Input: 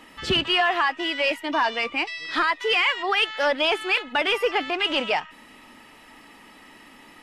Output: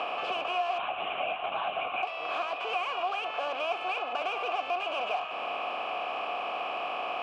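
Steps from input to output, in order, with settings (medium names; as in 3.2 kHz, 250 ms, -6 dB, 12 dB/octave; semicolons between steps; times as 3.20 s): spectral levelling over time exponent 0.4; saturation -17.5 dBFS, distortion -10 dB; 0.78–2.03 s: LPC vocoder at 8 kHz whisper; vowel filter a; three bands compressed up and down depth 70%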